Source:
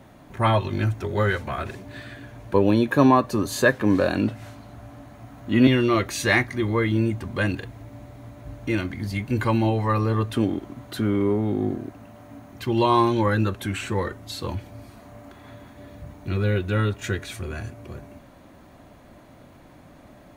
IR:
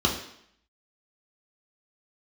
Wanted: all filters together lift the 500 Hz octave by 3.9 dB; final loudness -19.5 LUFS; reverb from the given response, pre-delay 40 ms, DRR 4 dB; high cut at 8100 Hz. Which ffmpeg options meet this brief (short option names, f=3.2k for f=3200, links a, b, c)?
-filter_complex "[0:a]lowpass=8.1k,equalizer=f=500:t=o:g=5,asplit=2[a][b];[1:a]atrim=start_sample=2205,adelay=40[c];[b][c]afir=irnorm=-1:irlink=0,volume=-17dB[d];[a][d]amix=inputs=2:normalize=0,volume=-2dB"